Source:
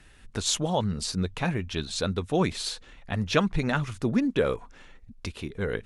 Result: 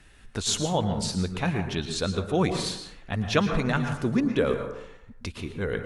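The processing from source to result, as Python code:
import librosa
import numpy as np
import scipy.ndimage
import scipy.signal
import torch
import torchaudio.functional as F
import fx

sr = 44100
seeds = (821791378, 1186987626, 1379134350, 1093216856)

y = fx.rev_plate(x, sr, seeds[0], rt60_s=0.75, hf_ratio=0.45, predelay_ms=100, drr_db=6.5)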